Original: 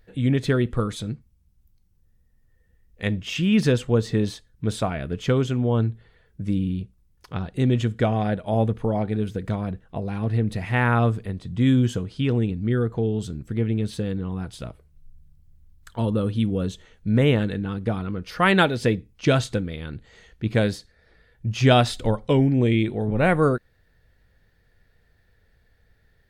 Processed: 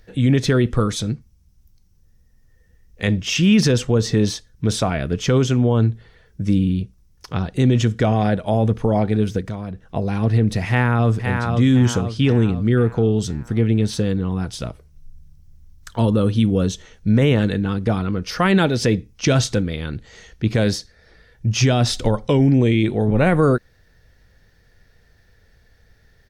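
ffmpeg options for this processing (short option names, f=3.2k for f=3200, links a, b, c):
-filter_complex "[0:a]asettb=1/sr,asplit=3[a][b][c];[a]atrim=end=9.414[d];[b]atrim=start=9.41:end=9.89,asetpts=PTS-STARTPTS,afade=t=in:d=0.004:c=qsin,afade=t=out:st=0.476:d=0.004:c=qsin,acompressor=threshold=-45dB:ratio=1.5:attack=3.2:release=140:knee=1:detection=peak[e];[c]atrim=start=9.886[f];[d][e]acrossfade=d=0.004:c1=hsin:c2=qsin[g];[g][f]acrossfade=d=0.004:c1=qsin:c2=hsin,asplit=2[h][i];[i]afade=t=in:st=10.68:d=0.01,afade=t=out:st=11.41:d=0.01,aecho=0:1:510|1020|1530|2040|2550|3060:0.334965|0.167483|0.0837414|0.0418707|0.0209353|0.0104677[j];[h][j]amix=inputs=2:normalize=0,equalizer=f=5.7k:w=2.7:g=9.5,acrossover=split=420[k][l];[l]acompressor=threshold=-21dB:ratio=6[m];[k][m]amix=inputs=2:normalize=0,alimiter=limit=-13.5dB:level=0:latency=1:release=17,volume=6.5dB"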